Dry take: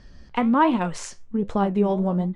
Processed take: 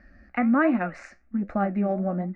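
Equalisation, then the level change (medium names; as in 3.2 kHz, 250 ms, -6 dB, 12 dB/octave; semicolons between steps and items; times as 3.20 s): high-pass 56 Hz 6 dB/octave; resonant low-pass 2.4 kHz, resonance Q 1.6; static phaser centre 650 Hz, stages 8; 0.0 dB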